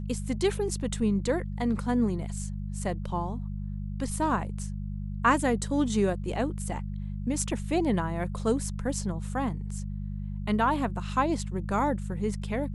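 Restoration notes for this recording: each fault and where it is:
mains hum 50 Hz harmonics 4 −34 dBFS

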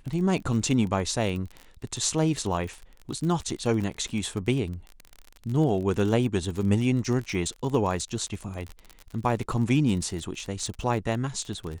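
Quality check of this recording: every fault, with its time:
surface crackle 38 per second −31 dBFS

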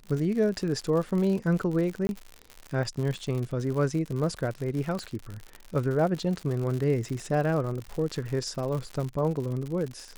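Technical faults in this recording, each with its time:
surface crackle 95 per second −32 dBFS
0:02.07–0:02.09: drop-out 21 ms
0:04.99: click −22 dBFS

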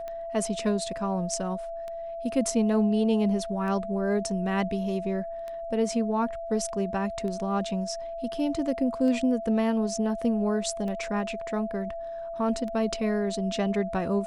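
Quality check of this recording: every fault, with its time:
scratch tick 33 1/3 rpm −25 dBFS
whistle 670 Hz −33 dBFS

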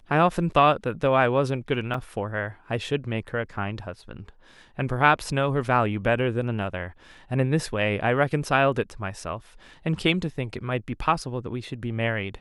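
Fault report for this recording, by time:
0:01.94: drop-out 3.3 ms

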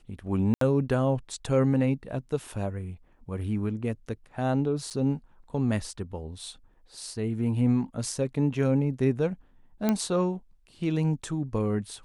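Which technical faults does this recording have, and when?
0:00.54–0:00.61: drop-out 73 ms
0:04.90–0:04.91: drop-out 7.4 ms
0:09.89: click −12 dBFS

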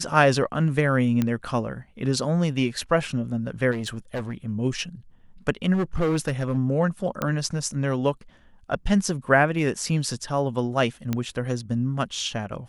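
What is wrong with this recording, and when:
0:01.22: click −11 dBFS
0:03.71–0:04.35: clipping −25 dBFS
0:05.73–0:06.58: clipping −19 dBFS
0:07.22: click −12 dBFS
0:11.13: click −12 dBFS

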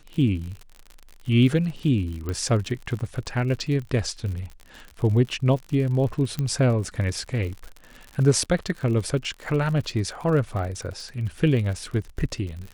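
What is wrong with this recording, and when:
surface crackle 66 per second −32 dBFS
0:02.29: click −17 dBFS
0:06.39: click −14 dBFS

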